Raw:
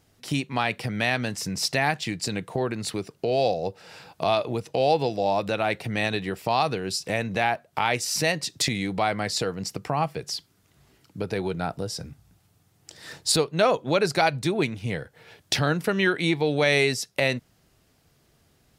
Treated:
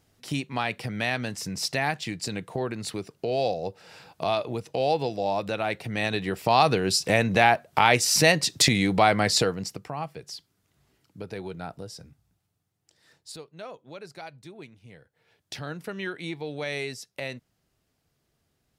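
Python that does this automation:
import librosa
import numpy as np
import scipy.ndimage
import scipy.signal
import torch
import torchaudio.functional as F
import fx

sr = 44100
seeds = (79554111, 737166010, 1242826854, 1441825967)

y = fx.gain(x, sr, db=fx.line((5.88, -3.0), (6.74, 5.0), (9.39, 5.0), (9.89, -8.0), (11.78, -8.0), (13.17, -20.0), (14.94, -20.0), (15.8, -11.0)))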